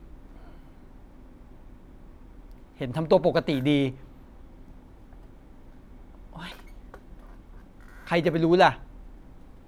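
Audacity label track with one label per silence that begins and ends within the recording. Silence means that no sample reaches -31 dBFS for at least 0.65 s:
3.900000	6.360000	silence
6.940000	8.070000	silence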